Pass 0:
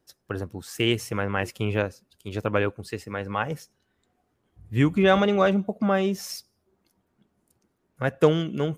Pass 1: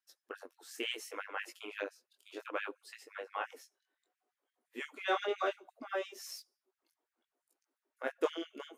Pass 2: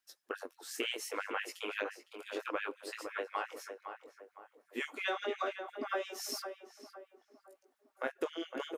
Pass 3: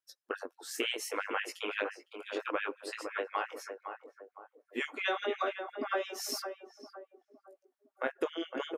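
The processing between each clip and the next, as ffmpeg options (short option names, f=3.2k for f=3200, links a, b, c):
-af "flanger=delay=17.5:depth=7:speed=0.66,afftfilt=real='re*gte(b*sr/1024,230*pow(1600/230,0.5+0.5*sin(2*PI*5.8*pts/sr)))':imag='im*gte(b*sr/1024,230*pow(1600/230,0.5+0.5*sin(2*PI*5.8*pts/sr)))':win_size=1024:overlap=0.75,volume=-7.5dB"
-filter_complex "[0:a]acompressor=threshold=-38dB:ratio=12,asplit=2[a][b];[b]adelay=509,lowpass=f=1.3k:p=1,volume=-6.5dB,asplit=2[c][d];[d]adelay=509,lowpass=f=1.3k:p=1,volume=0.44,asplit=2[e][f];[f]adelay=509,lowpass=f=1.3k:p=1,volume=0.44,asplit=2[g][h];[h]adelay=509,lowpass=f=1.3k:p=1,volume=0.44,asplit=2[i][j];[j]adelay=509,lowpass=f=1.3k:p=1,volume=0.44[k];[c][e][g][i][k]amix=inputs=5:normalize=0[l];[a][l]amix=inputs=2:normalize=0,volume=6dB"
-af "afftdn=nr=14:nf=-60,volume=3dB"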